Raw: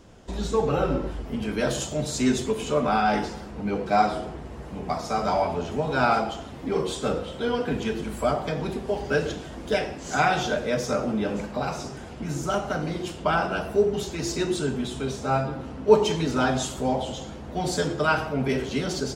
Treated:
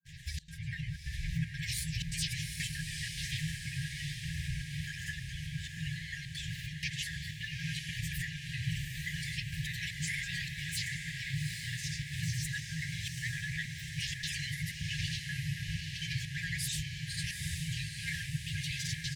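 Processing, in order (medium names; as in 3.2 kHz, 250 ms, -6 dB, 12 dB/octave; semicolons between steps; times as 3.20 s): RIAA curve recording; granulator, pitch spread up and down by 7 st; tone controls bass +9 dB, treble -12 dB; compression 4:1, threshold -34 dBFS, peak gain reduction 18.5 dB; peak limiter -32 dBFS, peak gain reduction 11 dB; small resonant body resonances 260/390 Hz, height 7 dB, ringing for 20 ms; harmony voices -5 st -8 dB; FFT band-reject 170–1600 Hz; trance gate "xxxx.xxxxx." 156 bpm -24 dB; echo that smears into a reverb 824 ms, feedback 59%, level -4.5 dB; trim +7 dB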